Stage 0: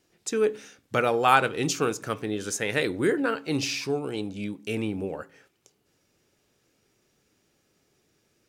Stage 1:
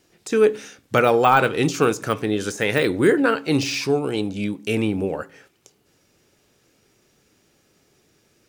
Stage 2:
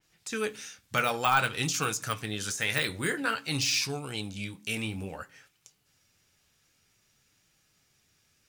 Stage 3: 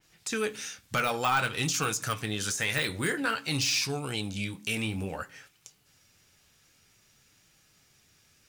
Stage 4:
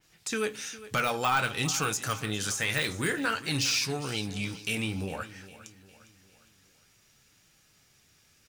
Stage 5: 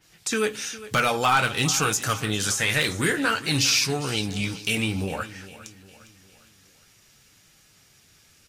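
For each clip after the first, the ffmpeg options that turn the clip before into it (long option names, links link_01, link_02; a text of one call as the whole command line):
ffmpeg -i in.wav -af "deesser=0.75,volume=7.5dB" out.wav
ffmpeg -i in.wav -af "equalizer=frequency=380:width_type=o:width=2:gain=-15,flanger=delay=6.2:depth=6.8:regen=-51:speed=0.53:shape=sinusoidal,adynamicequalizer=threshold=0.00794:dfrequency=3500:dqfactor=0.7:tfrequency=3500:tqfactor=0.7:attack=5:release=100:ratio=0.375:range=3:mode=boostabove:tftype=highshelf" out.wav
ffmpeg -i in.wav -filter_complex "[0:a]asplit=2[link_01][link_02];[link_02]acompressor=threshold=-36dB:ratio=6,volume=1.5dB[link_03];[link_01][link_03]amix=inputs=2:normalize=0,asoftclip=type=tanh:threshold=-16dB,volume=-1.5dB" out.wav
ffmpeg -i in.wav -af "aecho=1:1:406|812|1218|1624:0.15|0.0688|0.0317|0.0146" out.wav
ffmpeg -i in.wav -af "volume=6dB" -ar 44100 -c:a libvorbis -b:a 48k out.ogg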